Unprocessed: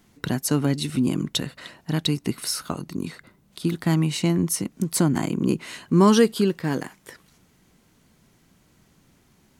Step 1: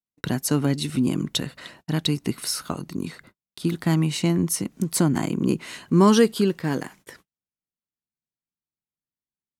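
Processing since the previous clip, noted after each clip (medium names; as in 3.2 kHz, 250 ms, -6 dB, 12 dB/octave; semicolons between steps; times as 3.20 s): gate -49 dBFS, range -43 dB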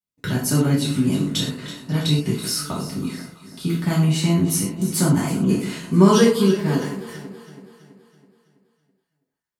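on a send: echo whose repeats swap between lows and highs 164 ms, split 900 Hz, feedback 70%, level -11 dB; on the sum: gated-style reverb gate 150 ms falling, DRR -7 dB; trim -5.5 dB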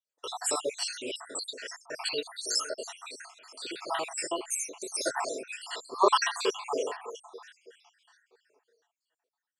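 random holes in the spectrogram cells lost 69%; elliptic band-pass 480–8200 Hz, stop band 40 dB; band-stop 2.1 kHz, Q 9; trim +3 dB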